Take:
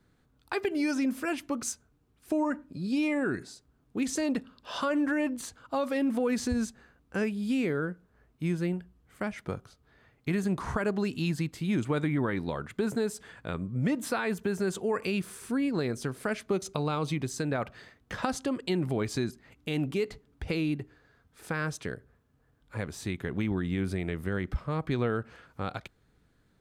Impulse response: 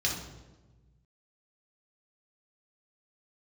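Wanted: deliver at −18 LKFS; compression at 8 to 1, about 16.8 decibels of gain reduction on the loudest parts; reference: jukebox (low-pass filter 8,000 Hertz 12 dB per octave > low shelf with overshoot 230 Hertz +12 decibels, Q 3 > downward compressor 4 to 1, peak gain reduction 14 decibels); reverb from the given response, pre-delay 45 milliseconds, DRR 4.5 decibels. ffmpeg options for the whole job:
-filter_complex "[0:a]acompressor=threshold=-43dB:ratio=8,asplit=2[link_01][link_02];[1:a]atrim=start_sample=2205,adelay=45[link_03];[link_02][link_03]afir=irnorm=-1:irlink=0,volume=-12dB[link_04];[link_01][link_04]amix=inputs=2:normalize=0,lowpass=8000,lowshelf=frequency=230:width_type=q:width=3:gain=12,acompressor=threshold=-35dB:ratio=4,volume=21.5dB"

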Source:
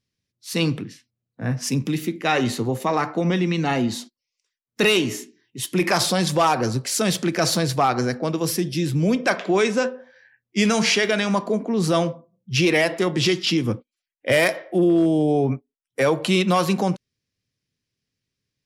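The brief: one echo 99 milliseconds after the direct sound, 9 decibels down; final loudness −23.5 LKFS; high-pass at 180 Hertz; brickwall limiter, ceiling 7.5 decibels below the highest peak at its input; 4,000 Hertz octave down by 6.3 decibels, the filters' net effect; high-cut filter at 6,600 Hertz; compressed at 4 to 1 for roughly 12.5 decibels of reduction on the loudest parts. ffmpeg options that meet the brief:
ffmpeg -i in.wav -af "highpass=180,lowpass=6600,equalizer=frequency=4000:width_type=o:gain=-8,acompressor=threshold=-31dB:ratio=4,alimiter=level_in=0.5dB:limit=-24dB:level=0:latency=1,volume=-0.5dB,aecho=1:1:99:0.355,volume=11dB" out.wav

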